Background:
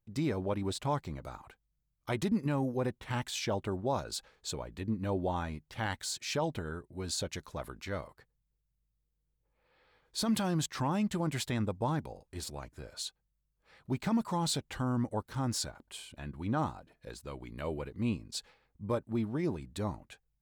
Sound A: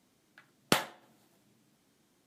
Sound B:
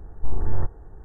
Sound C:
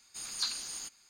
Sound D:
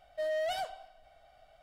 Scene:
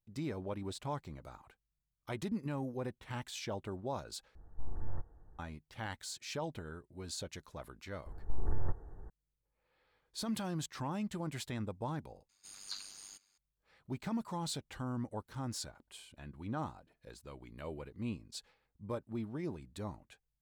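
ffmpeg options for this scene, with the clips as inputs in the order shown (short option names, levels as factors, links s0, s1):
-filter_complex "[2:a]asplit=2[s0][s1];[0:a]volume=0.447[s2];[s0]bandreject=f=400:w=7.1[s3];[s1]acompressor=threshold=0.158:ratio=6:attack=3.2:release=140:knee=1:detection=peak[s4];[3:a]tremolo=f=99:d=0.667[s5];[s2]asplit=3[s6][s7][s8];[s6]atrim=end=4.354[s9];[s3]atrim=end=1.04,asetpts=PTS-STARTPTS,volume=0.168[s10];[s7]atrim=start=5.386:end=12.294[s11];[s5]atrim=end=1.09,asetpts=PTS-STARTPTS,volume=0.398[s12];[s8]atrim=start=13.376[s13];[s4]atrim=end=1.04,asetpts=PTS-STARTPTS,volume=0.473,afade=t=in:d=0.004:c=hsin,afade=t=out:st=1.036:d=0.004:c=hsin,adelay=8060[s14];[s9][s10]acrossfade=d=0.004:c1=hsin:c2=hsin[s15];[s15][s11]acrossfade=d=0.004:c1=hsin:c2=hsin[s16];[s16][s12]acrossfade=d=0.004:c1=hsin:c2=hsin[s17];[s17][s13]acrossfade=d=0.004:c1=hsin:c2=hsin[s18];[s18][s14]amix=inputs=2:normalize=0"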